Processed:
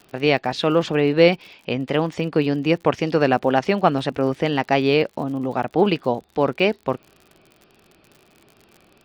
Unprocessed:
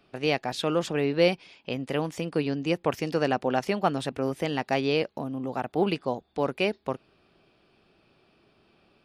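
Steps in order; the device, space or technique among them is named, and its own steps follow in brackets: lo-fi chain (low-pass 4.5 kHz 12 dB/octave; wow and flutter; crackle 62 per s -43 dBFS); trim +7.5 dB

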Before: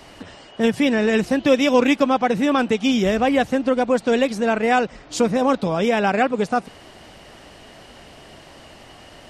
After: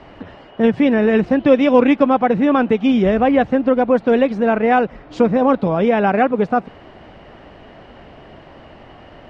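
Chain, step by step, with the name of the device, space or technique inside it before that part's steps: phone in a pocket (low-pass 3 kHz 12 dB/octave; treble shelf 2.3 kHz -9.5 dB); trim +4.5 dB

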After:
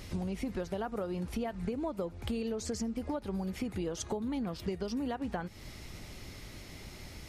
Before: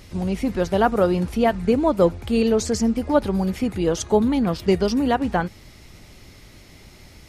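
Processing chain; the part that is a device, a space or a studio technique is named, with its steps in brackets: serial compression, leveller first (compression 2.5:1, threshold -20 dBFS, peak gain reduction 6.5 dB; compression 6:1, threshold -32 dBFS, peak gain reduction 14.5 dB); trim -1 dB

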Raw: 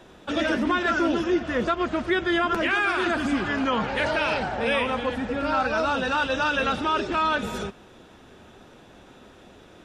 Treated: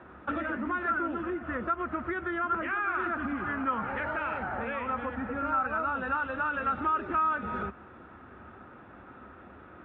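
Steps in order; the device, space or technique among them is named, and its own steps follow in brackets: bass amplifier (compression 6:1, threshold -30 dBFS, peak gain reduction 11.5 dB; cabinet simulation 66–2100 Hz, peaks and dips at 70 Hz +8 dB, 160 Hz -4 dB, 440 Hz -5 dB, 630 Hz -3 dB, 1.3 kHz +9 dB)

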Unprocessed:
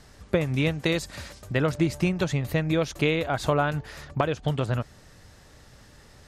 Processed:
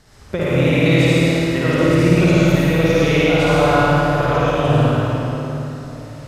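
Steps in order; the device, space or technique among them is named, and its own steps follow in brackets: tunnel (flutter echo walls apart 9.3 m, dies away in 1.4 s; reverberation RT60 3.6 s, pre-delay 68 ms, DRR -7.5 dB); trim -1 dB

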